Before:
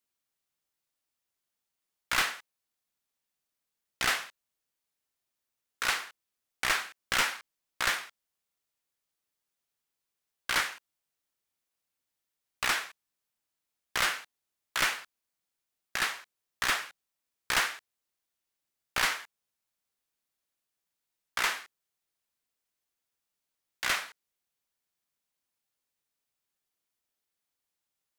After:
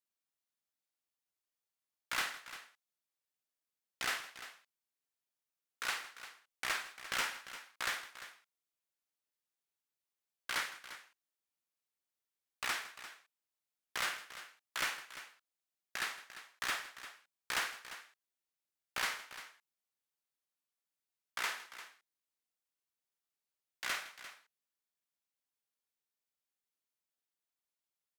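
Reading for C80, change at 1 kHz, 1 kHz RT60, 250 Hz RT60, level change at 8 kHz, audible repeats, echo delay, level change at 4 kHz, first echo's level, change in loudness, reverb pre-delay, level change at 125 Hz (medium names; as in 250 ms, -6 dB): no reverb, -8.0 dB, no reverb, no reverb, -8.0 dB, 3, 50 ms, -8.0 dB, -12.5 dB, -9.0 dB, no reverb, -12.5 dB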